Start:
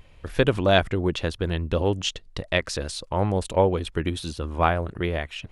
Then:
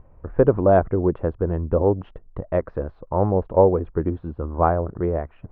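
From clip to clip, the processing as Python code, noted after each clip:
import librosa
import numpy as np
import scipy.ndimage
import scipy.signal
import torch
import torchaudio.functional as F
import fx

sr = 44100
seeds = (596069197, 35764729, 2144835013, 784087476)

y = fx.dynamic_eq(x, sr, hz=460.0, q=1.4, threshold_db=-31.0, ratio=4.0, max_db=4)
y = scipy.signal.sosfilt(scipy.signal.butter(4, 1200.0, 'lowpass', fs=sr, output='sos'), y)
y = y * 10.0 ** (2.0 / 20.0)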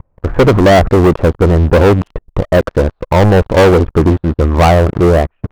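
y = fx.leveller(x, sr, passes=5)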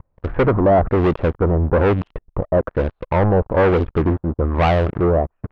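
y = fx.filter_lfo_lowpass(x, sr, shape='sine', hz=1.1, low_hz=920.0, high_hz=3500.0, q=1.2)
y = y * 10.0 ** (-8.0 / 20.0)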